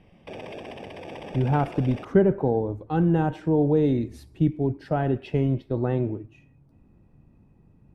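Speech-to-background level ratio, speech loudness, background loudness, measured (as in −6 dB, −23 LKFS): 15.5 dB, −24.5 LKFS, −40.0 LKFS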